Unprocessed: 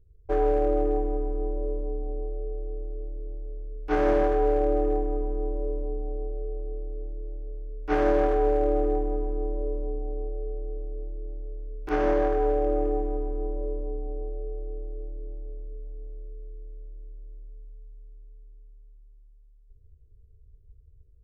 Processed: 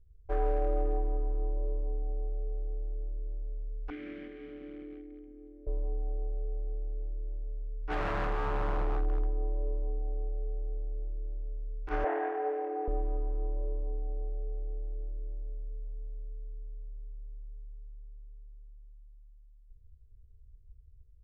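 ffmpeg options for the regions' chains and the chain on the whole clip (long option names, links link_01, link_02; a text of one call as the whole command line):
ffmpeg -i in.wav -filter_complex "[0:a]asettb=1/sr,asplit=3[link_01][link_02][link_03];[link_01]atrim=end=3.904[link_04];[link_02]atrim=start=3.9:end=5.67,asetpts=PTS-STARTPTS,afade=type=in:duration=0.004:curve=qsin,afade=type=out:start_time=1.766:duration=0.004:curve=qsin,asoftclip=type=hard:threshold=-19.5dB,acontrast=65,asplit=3[link_05][link_06][link_07];[link_05]bandpass=frequency=270:width_type=q:width=8,volume=0dB[link_08];[link_06]bandpass=frequency=2290:width_type=q:width=8,volume=-6dB[link_09];[link_07]bandpass=frequency=3010:width_type=q:width=8,volume=-9dB[link_10];[link_08][link_09][link_10]amix=inputs=3:normalize=0[link_11];[link_03]atrim=start=5.666[link_12];[link_04][link_11]acrossfade=duration=0.004:curve1=hsin:curve2=qsin[link_13];[link_13][link_12]acrossfade=duration=0.004:curve1=qsin:curve2=hsin,asettb=1/sr,asplit=3[link_14][link_15][link_16];[link_14]atrim=end=7.814[link_17];[link_15]atrim=start=7.81:end=9.29,asetpts=PTS-STARTPTS,afade=type=in:duration=0.004:curve=qsin,afade=type=out:start_time=1.476:duration=0.004:curve=qsin,acompressor=mode=upward:threshold=-44dB:ratio=2.5:attack=3.2:release=140:knee=2.83:detection=peak,aeval=exprs='0.0944*(abs(mod(val(0)/0.0944+3,4)-2)-1)':channel_layout=same,asplit=2[link_18][link_19];[link_19]adelay=27,volume=-13dB[link_20];[link_18][link_20]amix=inputs=2:normalize=0,atrim=end_sample=65268[link_21];[link_16]atrim=start=9.286[link_22];[link_17][link_21]acrossfade=duration=0.004:curve1=hsin:curve2=qsin[link_23];[link_23][link_22]acrossfade=duration=0.004:curve1=qsin:curve2=hsin,asettb=1/sr,asplit=3[link_24][link_25][link_26];[link_24]atrim=end=12.044[link_27];[link_25]atrim=start=12.04:end=12.88,asetpts=PTS-STARTPTS,afade=type=in:duration=0.004:curve=qsin,afade=type=out:start_time=0.836:duration=0.004:curve=qsin,highpass=frequency=350:width=0.5412,highpass=frequency=350:width=1.3066,equalizer=frequency=470:width_type=q:width=4:gain=4,equalizer=frequency=750:width_type=q:width=4:gain=10,equalizer=frequency=1200:width_type=q:width=4:gain=-4,equalizer=frequency=1900:width_type=q:width=4:gain=3,lowpass=frequency=2800:width=0.5412,lowpass=frequency=2800:width=1.3066,asplit=2[link_28][link_29];[link_29]adelay=27,volume=-2dB[link_30];[link_28][link_30]amix=inputs=2:normalize=0,atrim=end_sample=37044[link_31];[link_26]atrim=start=12.876[link_32];[link_27][link_31]acrossfade=duration=0.004:curve1=hsin:curve2=qsin[link_33];[link_33][link_32]acrossfade=duration=0.004:curve1=qsin:curve2=hsin,lowpass=frequency=1500:poles=1,equalizer=frequency=290:width=0.48:gain=-11.5" out.wav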